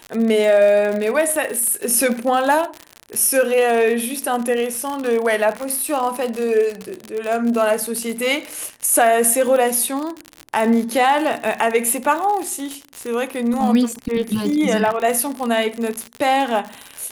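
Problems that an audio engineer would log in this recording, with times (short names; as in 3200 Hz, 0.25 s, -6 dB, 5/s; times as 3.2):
crackle 70/s -22 dBFS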